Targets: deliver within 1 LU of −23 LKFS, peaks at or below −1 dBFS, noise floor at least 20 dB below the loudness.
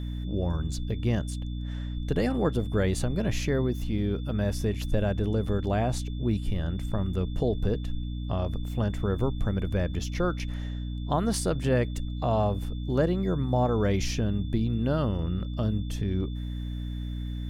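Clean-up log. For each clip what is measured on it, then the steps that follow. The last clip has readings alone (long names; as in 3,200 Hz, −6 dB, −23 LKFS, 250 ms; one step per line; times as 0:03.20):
mains hum 60 Hz; hum harmonics up to 300 Hz; level of the hum −30 dBFS; interfering tone 3,500 Hz; level of the tone −51 dBFS; integrated loudness −29.0 LKFS; sample peak −11.0 dBFS; target loudness −23.0 LKFS
→ mains-hum notches 60/120/180/240/300 Hz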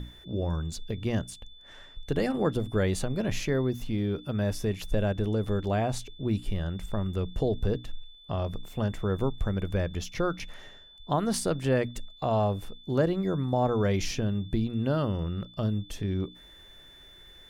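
mains hum none found; interfering tone 3,500 Hz; level of the tone −51 dBFS
→ notch filter 3,500 Hz, Q 30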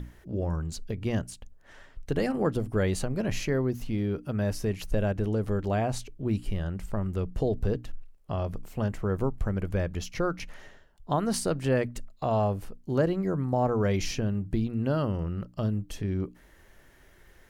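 interfering tone none found; integrated loudness −30.0 LKFS; sample peak −12.0 dBFS; target loudness −23.0 LKFS
→ level +7 dB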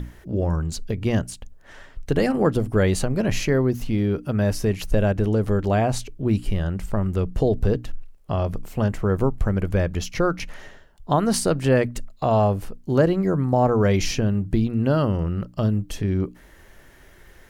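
integrated loudness −23.0 LKFS; sample peak −5.0 dBFS; background noise floor −50 dBFS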